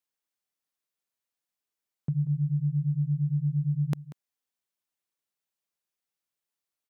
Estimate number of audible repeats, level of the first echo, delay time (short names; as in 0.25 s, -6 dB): 1, -16.5 dB, 0.188 s